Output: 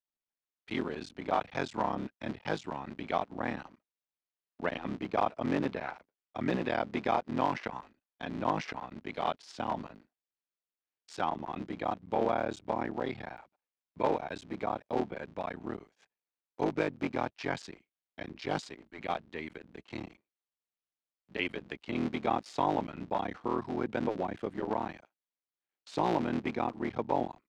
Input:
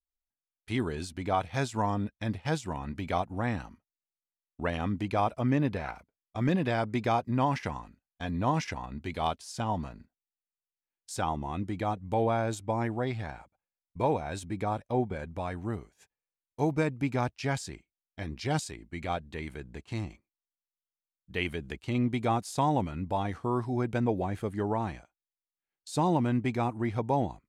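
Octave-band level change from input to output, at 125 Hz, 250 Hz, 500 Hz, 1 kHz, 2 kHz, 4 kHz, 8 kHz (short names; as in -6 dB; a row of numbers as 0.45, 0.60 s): -12.0, -4.0, -1.5, -1.5, -1.5, -2.5, -11.5 dB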